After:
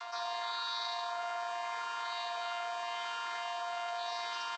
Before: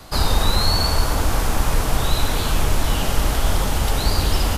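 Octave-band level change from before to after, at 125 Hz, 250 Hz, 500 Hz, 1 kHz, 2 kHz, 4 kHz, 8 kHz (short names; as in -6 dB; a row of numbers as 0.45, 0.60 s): under -40 dB, under -40 dB, -13.0 dB, -9.0 dB, -12.0 dB, -15.0 dB, -24.5 dB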